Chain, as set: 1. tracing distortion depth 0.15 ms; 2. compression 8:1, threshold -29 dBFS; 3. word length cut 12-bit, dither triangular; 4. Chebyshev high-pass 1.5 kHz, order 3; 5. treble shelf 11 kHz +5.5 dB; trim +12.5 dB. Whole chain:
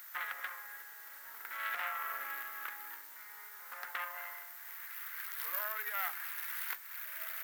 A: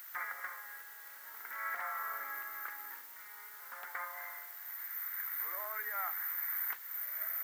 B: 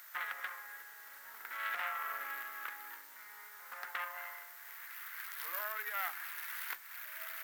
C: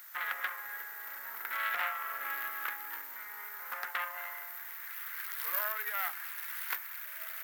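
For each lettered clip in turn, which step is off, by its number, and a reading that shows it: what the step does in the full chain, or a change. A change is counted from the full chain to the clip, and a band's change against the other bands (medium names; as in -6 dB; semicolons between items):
1, crest factor change -3.0 dB; 5, 8 kHz band -2.0 dB; 2, mean gain reduction 4.0 dB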